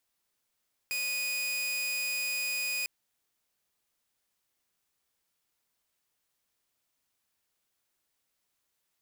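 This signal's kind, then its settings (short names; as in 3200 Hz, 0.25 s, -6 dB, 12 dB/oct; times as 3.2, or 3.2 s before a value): tone saw 2480 Hz -27.5 dBFS 1.95 s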